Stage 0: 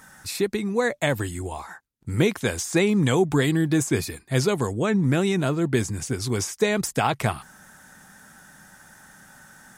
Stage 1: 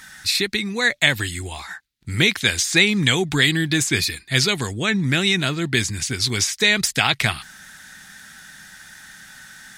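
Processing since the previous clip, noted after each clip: ten-band EQ 125 Hz -3 dB, 250 Hz -3 dB, 500 Hz -8 dB, 1000 Hz -6 dB, 2000 Hz +7 dB, 4000 Hz +11 dB; gain +4 dB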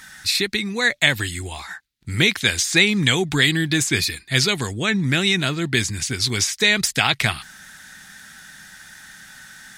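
nothing audible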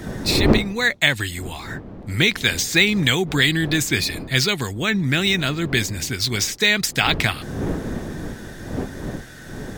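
wind noise 300 Hz -29 dBFS; decimation joined by straight lines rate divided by 2×

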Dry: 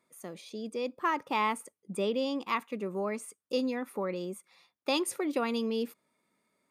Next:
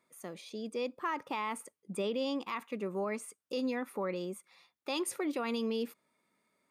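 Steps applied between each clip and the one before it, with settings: bell 1700 Hz +2.5 dB 2.7 oct; limiter -24 dBFS, peak gain reduction 8.5 dB; gain -2 dB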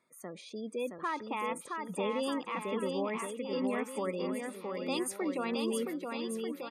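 spectral gate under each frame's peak -25 dB strong; bouncing-ball echo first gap 0.67 s, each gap 0.85×, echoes 5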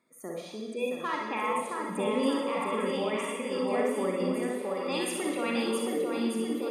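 reverb RT60 1.2 s, pre-delay 40 ms, DRR -0.5 dB; LFO bell 0.47 Hz 240–3100 Hz +7 dB

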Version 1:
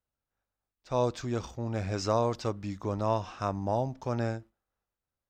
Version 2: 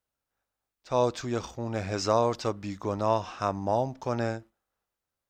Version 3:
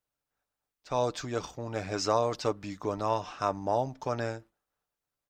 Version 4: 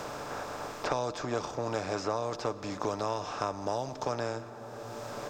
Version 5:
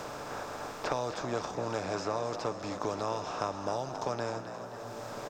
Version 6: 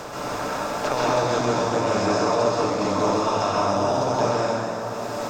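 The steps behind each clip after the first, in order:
low shelf 190 Hz -7.5 dB; gain +4 dB
harmonic-percussive split harmonic -5 dB; comb 6.8 ms, depth 32%
per-bin compression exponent 0.6; on a send at -17.5 dB: reverb RT60 2.2 s, pre-delay 65 ms; on the sum: three-band squash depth 100%; gain -5.5 dB
frequency-shifting echo 0.264 s, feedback 57%, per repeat +65 Hz, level -10 dB; gain -1.5 dB
plate-style reverb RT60 1.4 s, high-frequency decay 0.9×, pre-delay 0.115 s, DRR -6 dB; gain +5.5 dB

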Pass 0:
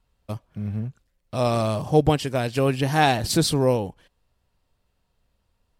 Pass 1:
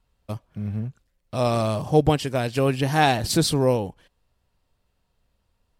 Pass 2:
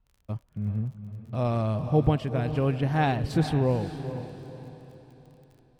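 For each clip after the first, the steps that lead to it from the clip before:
nothing audible
tone controls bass +7 dB, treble -15 dB; diffused feedback echo 0.452 s, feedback 42%, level -10.5 dB; crackle 25/s -39 dBFS; gain -7 dB

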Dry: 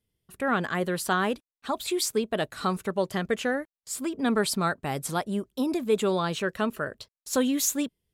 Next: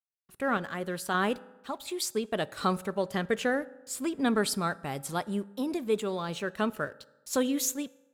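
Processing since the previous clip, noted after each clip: random-step tremolo, depth 55%; crossover distortion -57.5 dBFS; reverb RT60 1.1 s, pre-delay 3 ms, DRR 18.5 dB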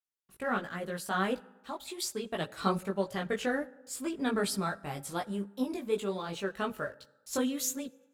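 chorus voices 4, 1.4 Hz, delay 18 ms, depth 3 ms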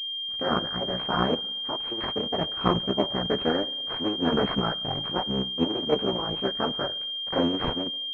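cycle switcher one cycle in 3, muted; vibrato 1.4 Hz 73 cents; pulse-width modulation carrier 3200 Hz; gain +8 dB

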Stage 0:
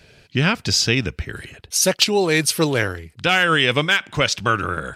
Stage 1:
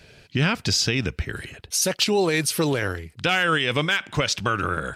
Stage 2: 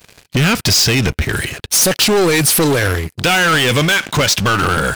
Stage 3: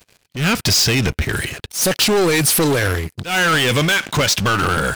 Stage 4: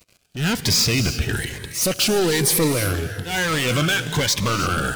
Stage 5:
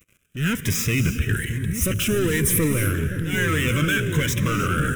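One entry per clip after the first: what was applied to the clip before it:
limiter -12 dBFS, peak gain reduction 8 dB
high shelf 7600 Hz +10 dB; sample leveller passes 5; gain -3 dB
auto swell 0.146 s; gain -2.5 dB
reverb, pre-delay 3 ms, DRR 9.5 dB; cascading phaser rising 1.1 Hz; gain -3 dB
fixed phaser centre 1900 Hz, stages 4; on a send: repeats that get brighter 0.624 s, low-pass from 200 Hz, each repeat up 1 oct, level -3 dB

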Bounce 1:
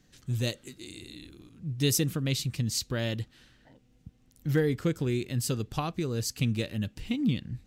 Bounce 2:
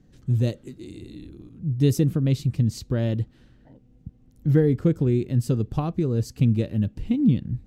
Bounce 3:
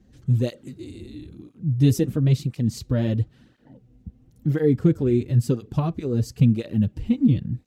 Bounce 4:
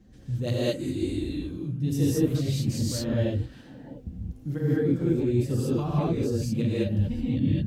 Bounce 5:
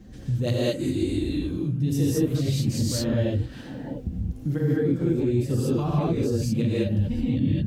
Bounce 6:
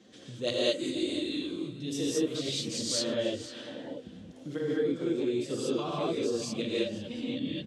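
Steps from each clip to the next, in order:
tilt shelf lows +9 dB
tape flanging out of phase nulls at 0.98 Hz, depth 7.4 ms; gain +4 dB
reverse; compressor 10:1, threshold -28 dBFS, peak gain reduction 16.5 dB; reverse; non-linear reverb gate 0.24 s rising, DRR -8 dB
compressor 2:1, threshold -35 dBFS, peak gain reduction 10 dB; gain +9 dB
speaker cabinet 410–8900 Hz, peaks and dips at 840 Hz -7 dB, 1700 Hz -4 dB, 3400 Hz +8 dB; echo 0.498 s -16 dB

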